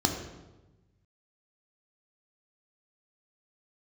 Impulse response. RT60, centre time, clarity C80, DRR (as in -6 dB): 1.1 s, 32 ms, 8.0 dB, 2.5 dB